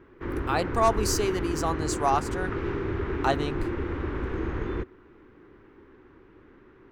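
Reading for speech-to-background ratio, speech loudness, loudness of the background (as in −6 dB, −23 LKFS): 3.5 dB, −28.0 LKFS, −31.5 LKFS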